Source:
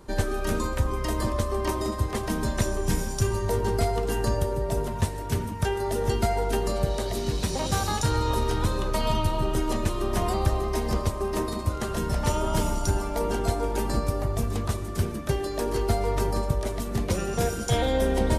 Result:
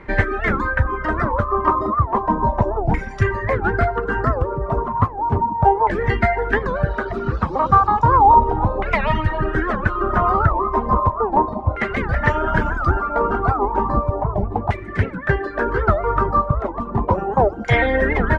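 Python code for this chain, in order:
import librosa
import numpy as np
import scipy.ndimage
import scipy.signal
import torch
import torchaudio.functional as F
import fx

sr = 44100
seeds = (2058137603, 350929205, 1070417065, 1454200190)

y = fx.dereverb_blind(x, sr, rt60_s=1.3)
y = fx.filter_lfo_lowpass(y, sr, shape='saw_down', hz=0.34, low_hz=800.0, high_hz=2100.0, q=7.8)
y = fx.record_warp(y, sr, rpm=78.0, depth_cents=250.0)
y = y * librosa.db_to_amplitude(7.0)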